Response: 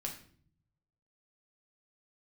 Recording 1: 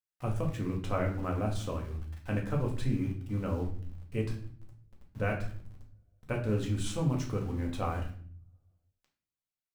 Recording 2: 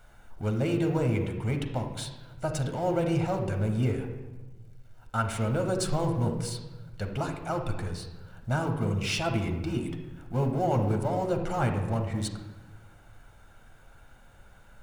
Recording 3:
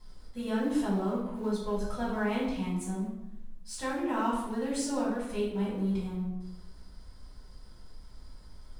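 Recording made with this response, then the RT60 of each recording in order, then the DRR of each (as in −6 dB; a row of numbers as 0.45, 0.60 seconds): 1; 0.50, 1.2, 0.85 seconds; −0.5, 3.5, −7.5 decibels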